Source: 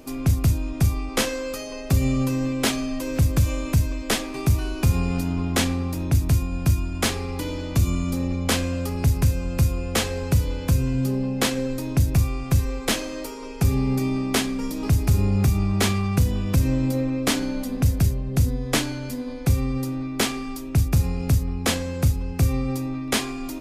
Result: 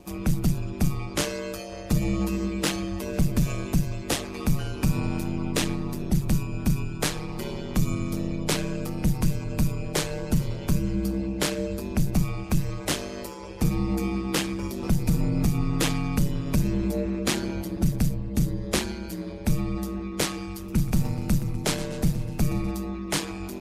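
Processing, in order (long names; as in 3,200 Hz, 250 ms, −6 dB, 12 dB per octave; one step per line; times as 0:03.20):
spectral magnitudes quantised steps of 15 dB
ring modulation 70 Hz
0:20.47–0:22.71: feedback echo with a swinging delay time 126 ms, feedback 57%, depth 181 cents, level −14 dB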